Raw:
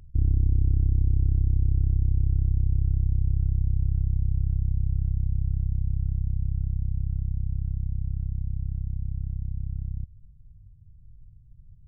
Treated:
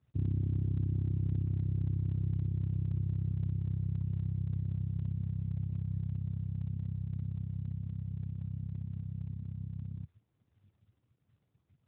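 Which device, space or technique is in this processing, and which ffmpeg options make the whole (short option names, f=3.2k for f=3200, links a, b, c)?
mobile call with aggressive noise cancelling: -af "highpass=100,afftdn=nr=20:nf=-37" -ar 8000 -c:a libopencore_amrnb -b:a 12200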